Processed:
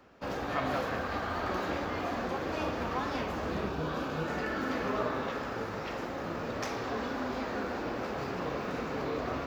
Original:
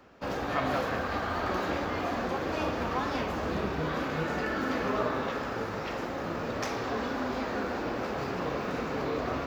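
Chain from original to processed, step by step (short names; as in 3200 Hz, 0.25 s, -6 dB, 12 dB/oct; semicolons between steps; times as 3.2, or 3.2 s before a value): 3.69–4.28 bell 2000 Hz -11 dB 0.25 oct; gain -2.5 dB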